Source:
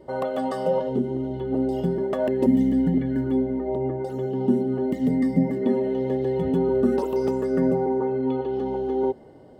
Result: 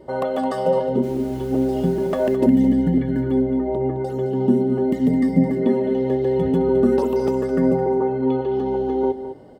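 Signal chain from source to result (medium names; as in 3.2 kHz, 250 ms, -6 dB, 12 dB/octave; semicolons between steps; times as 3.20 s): 1.02–2.35 s: added noise pink -51 dBFS; delay 214 ms -11.5 dB; trim +3.5 dB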